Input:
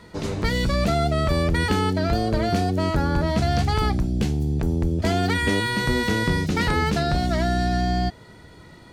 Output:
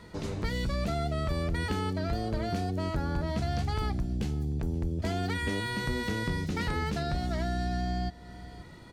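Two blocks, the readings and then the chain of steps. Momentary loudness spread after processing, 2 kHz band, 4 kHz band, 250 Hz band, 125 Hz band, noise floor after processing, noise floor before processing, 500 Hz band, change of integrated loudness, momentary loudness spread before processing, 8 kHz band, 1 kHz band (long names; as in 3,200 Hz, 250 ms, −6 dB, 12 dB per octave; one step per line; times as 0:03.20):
3 LU, −10.0 dB, −10.0 dB, −9.5 dB, −8.5 dB, −49 dBFS, −47 dBFS, −10.0 dB, −9.0 dB, 2 LU, −10.0 dB, −10.5 dB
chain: low-shelf EQ 110 Hz +4 dB
single-tap delay 529 ms −22 dB
downward compressor 1.5 to 1, threshold −35 dBFS, peak gain reduction 7.5 dB
level −4 dB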